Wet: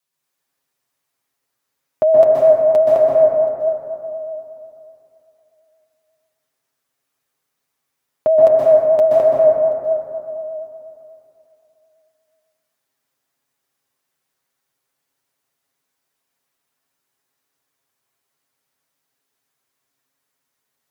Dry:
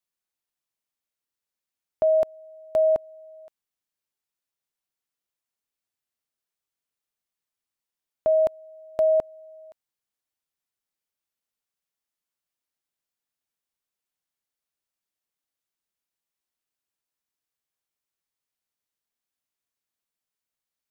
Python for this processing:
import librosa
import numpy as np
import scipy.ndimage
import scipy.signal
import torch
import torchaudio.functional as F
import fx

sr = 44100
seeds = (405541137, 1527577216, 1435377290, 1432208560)

y = fx.highpass(x, sr, hz=93.0, slope=6)
y = y + 0.51 * np.pad(y, (int(7.4 * sr / 1000.0), 0))[:len(y)]
y = fx.rev_plate(y, sr, seeds[0], rt60_s=2.9, hf_ratio=0.3, predelay_ms=115, drr_db=-6.5)
y = fx.vibrato(y, sr, rate_hz=8.2, depth_cents=42.0)
y = F.gain(torch.from_numpy(y), 7.0).numpy()